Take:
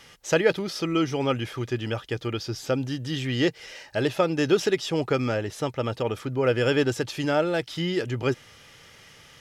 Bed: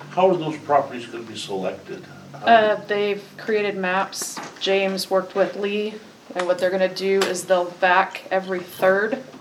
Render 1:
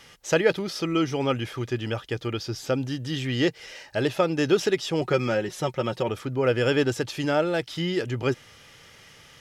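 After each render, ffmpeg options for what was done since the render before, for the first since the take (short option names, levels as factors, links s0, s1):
-filter_complex "[0:a]asettb=1/sr,asplit=3[s0][s1][s2];[s0]atrim=end=5.014[s3];[s1]atrim=start=5.01:end=6.09,asetpts=PTS-STARTPTS,afade=t=in:d=0.004:c=qsin,afade=t=out:st=1.076:d=0.004:c=qsin,aecho=1:1:5.5:0.66,atrim=end_sample=47628[s4];[s2]atrim=start=6.086[s5];[s3][s4]acrossfade=d=0.004:c1=hsin:c2=qsin[s6];[s6][s5]acrossfade=d=0.004:c1=qsin:c2=hsin"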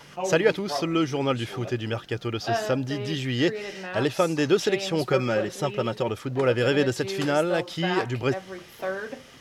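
-filter_complex "[1:a]volume=0.224[s0];[0:a][s0]amix=inputs=2:normalize=0"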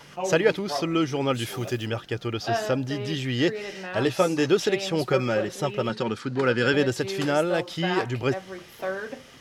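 -filter_complex "[0:a]asplit=3[s0][s1][s2];[s0]afade=t=out:st=1.33:d=0.02[s3];[s1]aemphasis=mode=production:type=50fm,afade=t=in:st=1.33:d=0.02,afade=t=out:st=1.85:d=0.02[s4];[s2]afade=t=in:st=1.85:d=0.02[s5];[s3][s4][s5]amix=inputs=3:normalize=0,asettb=1/sr,asplit=3[s6][s7][s8];[s6]atrim=end=4.044[s9];[s7]atrim=start=4.04:end=4.46,asetpts=PTS-STARTPTS,afade=t=in:d=0.004:c=qsin,afade=t=out:st=0.416:d=0.004:c=qsin,asplit=2[s10][s11];[s11]adelay=16,volume=0.473[s12];[s10][s12]amix=inputs=2:normalize=0,atrim=end_sample=18522[s13];[s8]atrim=start=4.456[s14];[s9][s13]acrossfade=d=0.004:c1=hsin:c2=qsin[s15];[s15][s14]acrossfade=d=0.004:c1=qsin:c2=hsin,asettb=1/sr,asplit=3[s16][s17][s18];[s16]atrim=end=5.894[s19];[s17]atrim=start=5.89:end=6.74,asetpts=PTS-STARTPTS,afade=t=in:d=0.004:c=qsin,afade=t=out:st=0.846:d=0.004:c=qsin,highpass=110,equalizer=f=220:t=q:w=4:g=7,equalizer=f=630:t=q:w=4:g=-9,equalizer=f=1500:t=q:w=4:g=7,equalizer=f=4400:t=q:w=4:g=8,lowpass=f=9800:w=0.5412,lowpass=f=9800:w=1.3066[s20];[s18]atrim=start=6.736[s21];[s19][s20]acrossfade=d=0.004:c1=hsin:c2=qsin[s22];[s22][s21]acrossfade=d=0.004:c1=qsin:c2=hsin"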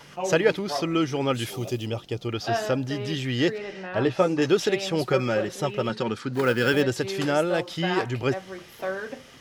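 -filter_complex "[0:a]asettb=1/sr,asplit=3[s0][s1][s2];[s0]atrim=end=1.504[s3];[s1]atrim=start=1.5:end=2.29,asetpts=PTS-STARTPTS,afade=t=in:d=0.004:c=qsin,afade=t=out:st=0.786:d=0.004:c=qsin,equalizer=f=1600:t=o:w=0.68:g=-13.5[s4];[s2]atrim=start=2.286[s5];[s3][s4]acrossfade=d=0.004:c1=hsin:c2=qsin[s6];[s6][s5]acrossfade=d=0.004:c1=qsin:c2=hsin,asettb=1/sr,asplit=3[s7][s8][s9];[s7]atrim=end=3.584[s10];[s8]atrim=start=3.58:end=4.42,asetpts=PTS-STARTPTS,afade=t=in:d=0.004:c=qsin,afade=t=out:st=0.836:d=0.004:c=qsin,aemphasis=mode=reproduction:type=75fm[s11];[s9]atrim=start=4.416[s12];[s10][s11]acrossfade=d=0.004:c1=hsin:c2=qsin[s13];[s13][s12]acrossfade=d=0.004:c1=qsin:c2=hsin,asplit=3[s14][s15][s16];[s14]afade=t=out:st=6.33:d=0.02[s17];[s15]acrusher=bits=6:mode=log:mix=0:aa=0.000001,afade=t=in:st=6.33:d=0.02,afade=t=out:st=6.81:d=0.02[s18];[s16]afade=t=in:st=6.81:d=0.02[s19];[s17][s18][s19]amix=inputs=3:normalize=0"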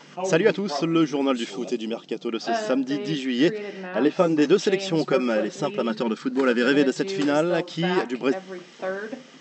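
-af "afftfilt=real='re*between(b*sr/4096,150,8100)':imag='im*between(b*sr/4096,150,8100)':win_size=4096:overlap=0.75,equalizer=f=260:w=1.5:g=6"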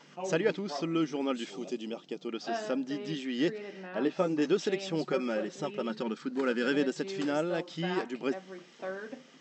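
-af "volume=0.355"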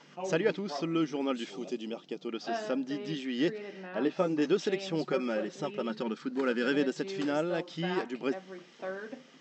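-af "lowpass=7200"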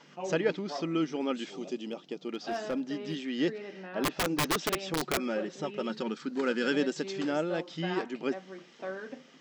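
-filter_complex "[0:a]asettb=1/sr,asplit=3[s0][s1][s2];[s0]atrim=end=1.884[s3];[s1]atrim=start=1.88:end=3.29,asetpts=PTS-STARTPTS,afade=t=in:d=0.004:c=qsin,afade=t=out:st=1.406:d=0.004:c=qsin,asoftclip=type=hard:threshold=0.0473[s4];[s2]atrim=start=3.286[s5];[s3][s4]acrossfade=d=0.004:c1=hsin:c2=qsin[s6];[s6][s5]acrossfade=d=0.004:c1=qsin:c2=hsin,asettb=1/sr,asplit=3[s7][s8][s9];[s7]atrim=end=4.034[s10];[s8]atrim=start=4.03:end=5.18,asetpts=PTS-STARTPTS,afade=t=in:d=0.004:c=qsin,afade=t=out:st=1.146:d=0.004:c=qsin,aeval=exprs='(mod(13.3*val(0)+1,2)-1)/13.3':c=same[s11];[s9]atrim=start=5.176[s12];[s10][s11]acrossfade=d=0.004:c1=hsin:c2=qsin[s13];[s13][s12]acrossfade=d=0.004:c1=qsin:c2=hsin,asettb=1/sr,asplit=3[s14][s15][s16];[s14]atrim=end=5.774[s17];[s15]atrim=start=5.77:end=7.13,asetpts=PTS-STARTPTS,afade=t=in:d=0.004:c=qsin,afade=t=out:st=1.356:d=0.004:c=qsin,highshelf=f=4800:g=7[s18];[s16]atrim=start=7.126[s19];[s17][s18]acrossfade=d=0.004:c1=hsin:c2=qsin[s20];[s20][s19]acrossfade=d=0.004:c1=qsin:c2=hsin"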